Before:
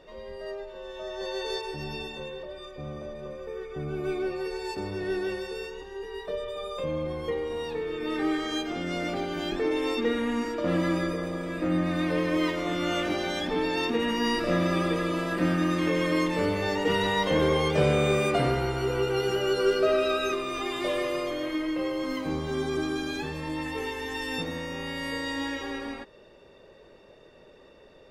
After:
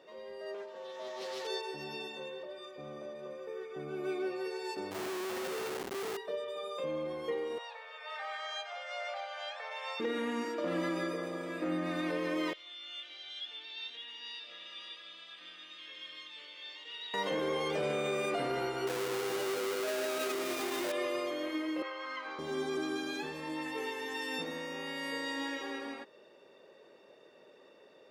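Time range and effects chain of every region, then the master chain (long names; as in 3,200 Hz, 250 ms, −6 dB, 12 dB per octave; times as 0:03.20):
0:00.54–0:01.47: comb filter 4.3 ms, depth 71% + hard clipping −32 dBFS + highs frequency-modulated by the lows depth 0.23 ms
0:04.91–0:06.17: parametric band 88 Hz +7.5 dB 2.3 octaves + comparator with hysteresis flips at −39.5 dBFS
0:07.58–0:10.00: Butterworth high-pass 530 Hz 96 dB per octave + high-frequency loss of the air 82 metres
0:12.53–0:17.14: resonant band-pass 3,400 Hz, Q 5 + single-tap delay 565 ms −6 dB
0:18.87–0:20.92: each half-wave held at its own peak + notch filter 1,200 Hz, Q 25
0:21.82–0:22.39: band-pass filter 800–4,000 Hz + parametric band 1,400 Hz +7.5 dB 0.76 octaves
whole clip: high-pass filter 260 Hz 12 dB per octave; brickwall limiter −20.5 dBFS; level −4.5 dB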